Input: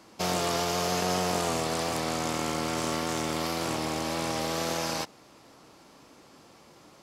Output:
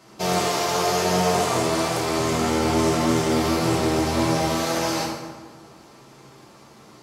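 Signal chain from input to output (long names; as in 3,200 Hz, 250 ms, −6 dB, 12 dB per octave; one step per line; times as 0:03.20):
0:02.19–0:04.43: low-shelf EQ 260 Hz +8.5 dB
convolution reverb RT60 1.4 s, pre-delay 4 ms, DRR −5 dB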